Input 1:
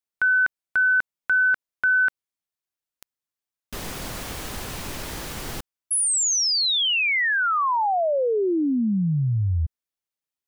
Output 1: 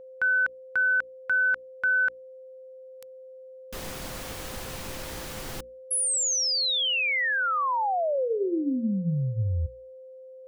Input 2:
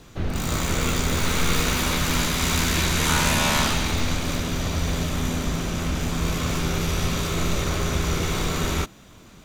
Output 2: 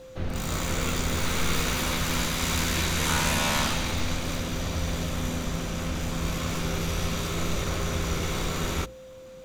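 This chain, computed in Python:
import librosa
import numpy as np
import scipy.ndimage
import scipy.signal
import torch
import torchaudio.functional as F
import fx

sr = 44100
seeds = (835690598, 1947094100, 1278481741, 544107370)

y = fx.hum_notches(x, sr, base_hz=60, count=8)
y = y + 10.0 ** (-39.0 / 20.0) * np.sin(2.0 * np.pi * 520.0 * np.arange(len(y)) / sr)
y = F.gain(torch.from_numpy(y), -4.0).numpy()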